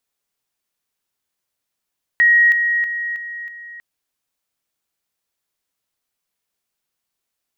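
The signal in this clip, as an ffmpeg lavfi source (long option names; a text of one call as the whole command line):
ffmpeg -f lavfi -i "aevalsrc='pow(10,(-9-6*floor(t/0.32))/20)*sin(2*PI*1890*t)':duration=1.6:sample_rate=44100" out.wav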